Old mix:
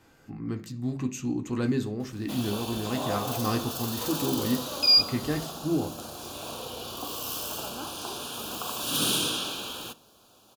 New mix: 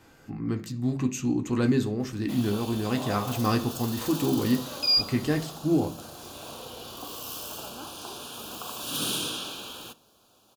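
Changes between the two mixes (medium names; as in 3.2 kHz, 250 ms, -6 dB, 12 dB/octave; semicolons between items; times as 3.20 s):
speech +3.5 dB; background -3.5 dB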